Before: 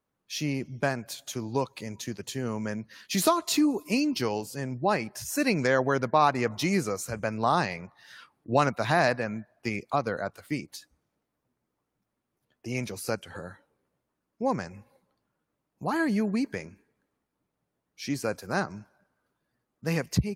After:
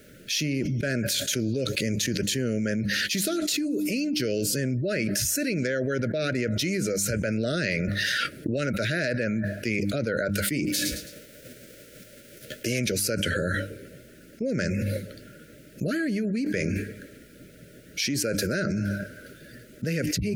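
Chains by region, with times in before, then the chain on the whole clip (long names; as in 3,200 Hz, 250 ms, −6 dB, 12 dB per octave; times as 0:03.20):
0:10.66–0:12.78: spectral envelope flattened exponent 0.6 + parametric band 540 Hz +7.5 dB 0.56 octaves + repeating echo 109 ms, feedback 35%, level −20 dB
whole clip: Chebyshev band-stop filter 620–1,400 Hz, order 4; hum removal 100.5 Hz, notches 3; envelope flattener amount 100%; level −6.5 dB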